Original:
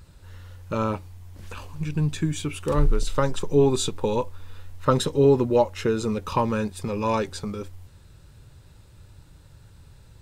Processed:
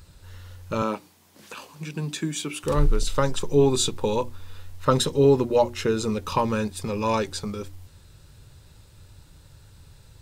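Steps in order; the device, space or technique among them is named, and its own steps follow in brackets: presence and air boost (peaking EQ 4.6 kHz +3.5 dB 1.5 oct; treble shelf 9.2 kHz +5.5 dB); hum notches 60/120/180/240/300/360 Hz; 0.82–2.64 s: high-pass 180 Hz 24 dB/octave

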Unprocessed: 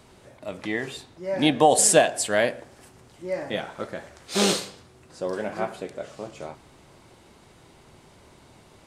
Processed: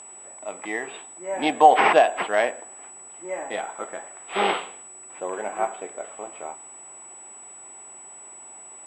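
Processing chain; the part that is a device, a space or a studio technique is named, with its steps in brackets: toy sound module (decimation joined by straight lines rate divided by 6×; class-D stage that switches slowly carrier 7.9 kHz; cabinet simulation 520–4800 Hz, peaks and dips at 550 Hz -6 dB, 790 Hz +4 dB, 1.6 kHz -5 dB, 4.3 kHz -9 dB); trim +5 dB

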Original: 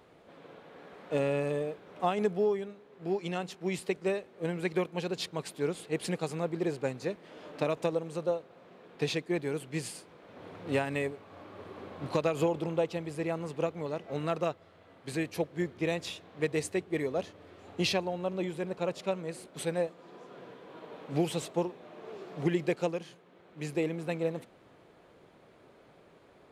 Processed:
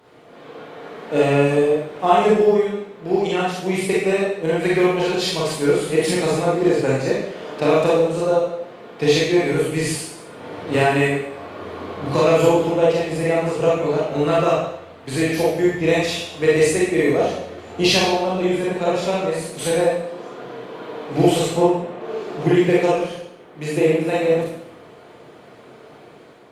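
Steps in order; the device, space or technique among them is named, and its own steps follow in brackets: 21.42–22.01 s: tone controls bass +3 dB, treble -11 dB; far-field microphone of a smart speaker (reverberation RT60 0.75 s, pre-delay 28 ms, DRR -6.5 dB; high-pass 85 Hz 24 dB/octave; level rider gain up to 3.5 dB; trim +4 dB; Opus 48 kbps 48 kHz)

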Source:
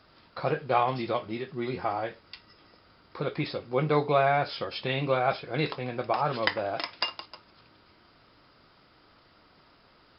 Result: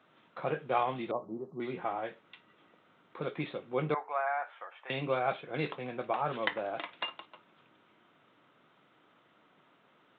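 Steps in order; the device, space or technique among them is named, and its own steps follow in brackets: 1.11–1.60 s: steep low-pass 1.1 kHz 48 dB/octave; 3.94–4.90 s: Chebyshev band-pass 780–1800 Hz, order 2; Bluetooth headset (high-pass 140 Hz 24 dB/octave; resampled via 8 kHz; trim -5 dB; SBC 64 kbps 16 kHz)

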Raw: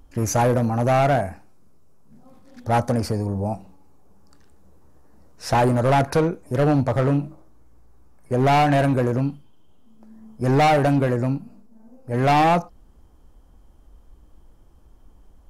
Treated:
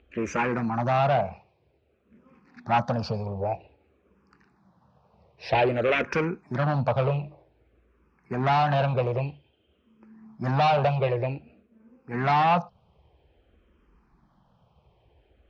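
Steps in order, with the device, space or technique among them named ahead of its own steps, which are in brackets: harmonic-percussive split harmonic -6 dB; 5.61–6.25 s: peaking EQ 5.6 kHz +7.5 dB 0.65 oct; barber-pole phaser into a guitar amplifier (barber-pole phaser -0.52 Hz; saturation -18.5 dBFS, distortion -17 dB; cabinet simulation 79–4100 Hz, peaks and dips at 96 Hz -4 dB, 280 Hz -8 dB, 2.5 kHz +8 dB); trim +4 dB

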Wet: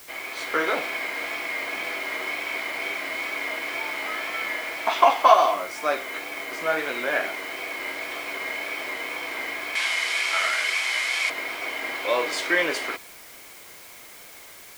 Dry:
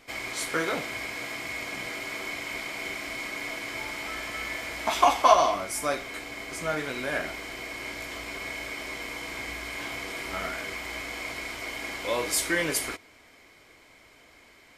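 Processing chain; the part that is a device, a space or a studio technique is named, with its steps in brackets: dictaphone (band-pass 390–3600 Hz; level rider gain up to 5 dB; wow and flutter; white noise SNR 19 dB); 9.75–11.30 s: frequency weighting ITU-R 468; trim +1 dB

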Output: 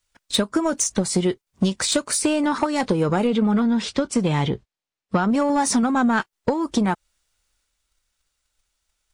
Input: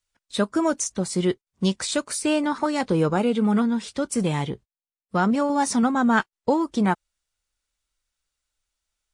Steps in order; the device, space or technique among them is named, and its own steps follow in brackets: drum-bus smash (transient shaper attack +8 dB, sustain +4 dB; compression 16:1, threshold -20 dBFS, peak gain reduction 12.5 dB; saturation -16.5 dBFS, distortion -17 dB); 3.27–5.29 s: low-pass 6 kHz 12 dB/octave; trim +6 dB

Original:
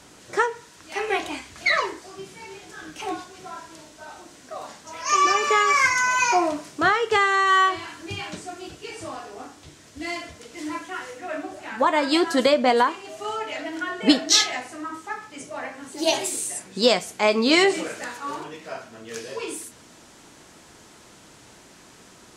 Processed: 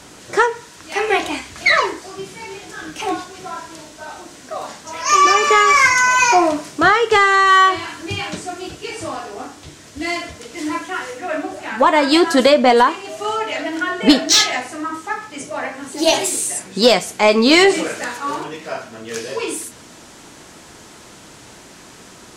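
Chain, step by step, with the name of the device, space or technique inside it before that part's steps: saturation between pre-emphasis and de-emphasis (treble shelf 6.2 kHz +12 dB; saturation -9.5 dBFS, distortion -17 dB; treble shelf 6.2 kHz -12 dB); trim +8 dB

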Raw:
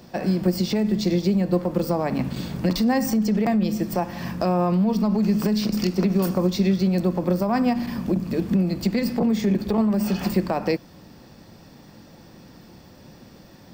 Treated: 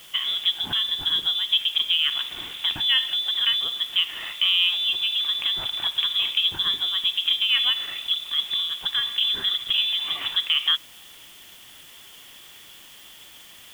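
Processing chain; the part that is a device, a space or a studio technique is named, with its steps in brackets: scrambled radio voice (band-pass 360–3200 Hz; frequency inversion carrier 3.7 kHz; white noise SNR 24 dB); trim +3.5 dB

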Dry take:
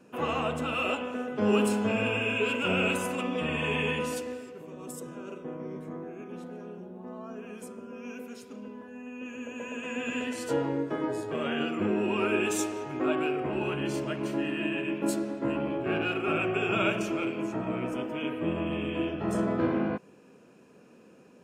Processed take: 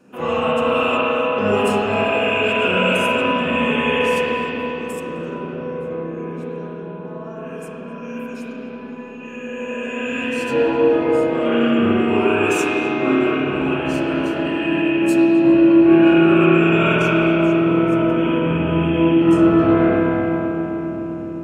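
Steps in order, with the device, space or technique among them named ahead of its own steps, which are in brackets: dub delay into a spring reverb (filtered feedback delay 258 ms, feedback 83%, low-pass 1.2 kHz, level -7 dB; spring tank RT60 3.3 s, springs 30/49 ms, chirp 75 ms, DRR -8 dB); trim +2.5 dB

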